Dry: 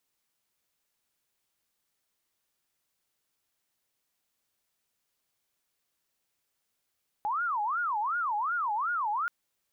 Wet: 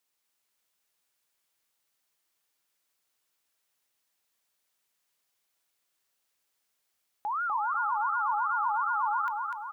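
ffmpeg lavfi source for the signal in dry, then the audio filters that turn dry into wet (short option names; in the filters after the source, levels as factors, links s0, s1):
-f lavfi -i "aevalsrc='0.0447*sin(2*PI*(1132.5*t-307.5/(2*PI*2.7)*sin(2*PI*2.7*t)))':d=2.03:s=44100"
-af "lowshelf=f=320:g=-8.5,aecho=1:1:247|494|741|988|1235|1482|1729:0.631|0.334|0.177|0.0939|0.0498|0.0264|0.014"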